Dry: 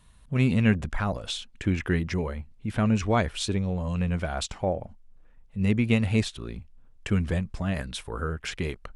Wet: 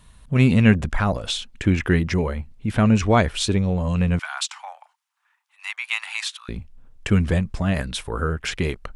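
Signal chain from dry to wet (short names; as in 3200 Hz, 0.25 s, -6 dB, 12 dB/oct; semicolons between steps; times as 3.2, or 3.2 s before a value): 4.19–6.49 steep high-pass 890 Hz 48 dB/oct; gain +6.5 dB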